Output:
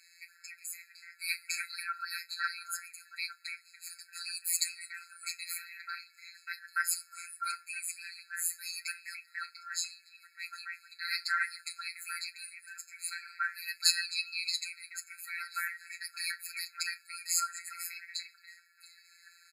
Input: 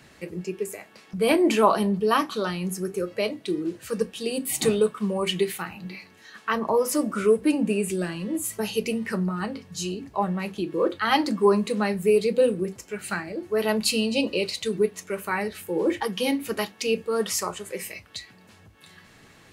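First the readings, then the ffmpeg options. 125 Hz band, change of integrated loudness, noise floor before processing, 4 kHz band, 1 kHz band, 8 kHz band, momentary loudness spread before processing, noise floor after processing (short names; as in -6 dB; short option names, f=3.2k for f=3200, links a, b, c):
under -40 dB, -10.5 dB, -53 dBFS, -4.0 dB, -14.0 dB, -2.0 dB, 13 LU, -63 dBFS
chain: -filter_complex "[0:a]afftfilt=real='hypot(re,im)*cos(PI*b)':imag='0':win_size=1024:overlap=0.75,acrossover=split=2100[a][b];[a]adelay=290[c];[c][b]amix=inputs=2:normalize=0,afftfilt=real='re*eq(mod(floor(b*sr/1024/1300),2),1)':imag='im*eq(mod(floor(b*sr/1024/1300),2),1)':win_size=1024:overlap=0.75,volume=4dB"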